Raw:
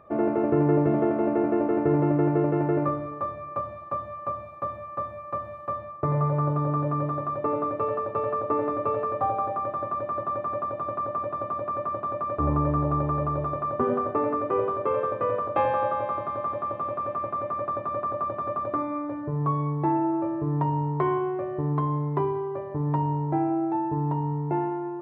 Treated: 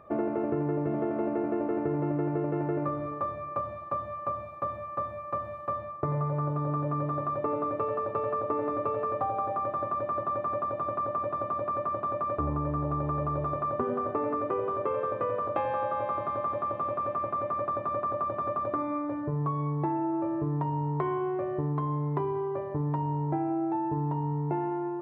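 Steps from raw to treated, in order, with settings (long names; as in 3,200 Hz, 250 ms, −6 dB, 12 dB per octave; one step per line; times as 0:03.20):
downward compressor 6 to 1, threshold −26 dBFS, peak gain reduction 9 dB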